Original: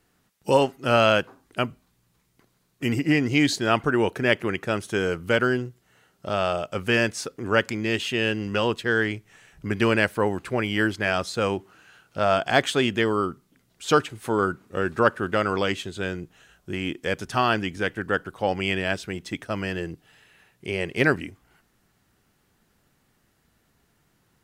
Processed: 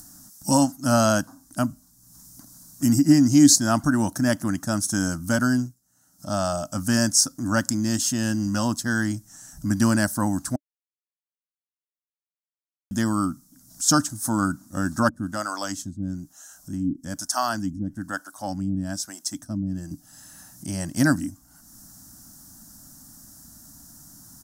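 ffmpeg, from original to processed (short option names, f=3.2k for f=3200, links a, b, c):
-filter_complex "[0:a]asettb=1/sr,asplit=3[a][b][c];[a]atrim=end=15.094[d];[b]atrim=start=15.09:end=19.91,asetpts=PTS-STARTPTS,afade=t=in:d=0.004:c=qsin,afade=t=out:st=4.816:d=0.004:c=qsin,acrossover=split=400[e][f];[e]aeval=exprs='val(0)*(1-1/2+1/2*cos(2*PI*1.1*n/s))':c=same[g];[f]aeval=exprs='val(0)*(1-1/2-1/2*cos(2*PI*1.1*n/s))':c=same[h];[g][h]amix=inputs=2:normalize=0[i];[c]atrim=start=19.906[j];[d][i]acrossfade=d=0.004:c1=hsin:c2=qsin[k];[k][j]acrossfade=d=0.004:c1=qsin:c2=hsin,asplit=5[l][m][n][o][p];[l]atrim=end=5.76,asetpts=PTS-STARTPTS,afade=t=out:st=5.61:d=0.15:silence=0.211349[q];[m]atrim=start=5.76:end=6.18,asetpts=PTS-STARTPTS,volume=-13.5dB[r];[n]atrim=start=6.18:end=10.56,asetpts=PTS-STARTPTS,afade=t=in:d=0.15:silence=0.211349,afade=t=out:st=4.376:d=0.004:c=hsin[s];[o]atrim=start=10.56:end=12.91,asetpts=PTS-STARTPTS,volume=0[t];[p]atrim=start=12.91,asetpts=PTS-STARTPTS,afade=t=in:d=0.004:c=hsin[u];[q][r][s][t][u]concat=n=5:v=0:a=1,firequalizer=gain_entry='entry(140,0);entry(290,6);entry(410,-28);entry(600,-4);entry(1600,-6);entry(2300,-24);entry(5500,13)':delay=0.05:min_phase=1,acompressor=mode=upward:threshold=-40dB:ratio=2.5,volume=3.5dB"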